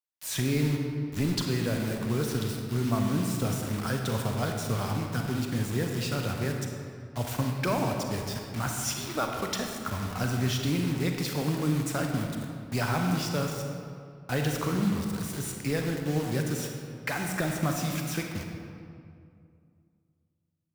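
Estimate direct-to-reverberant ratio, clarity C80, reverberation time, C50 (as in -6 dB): 2.0 dB, 4.0 dB, 2.4 s, 3.0 dB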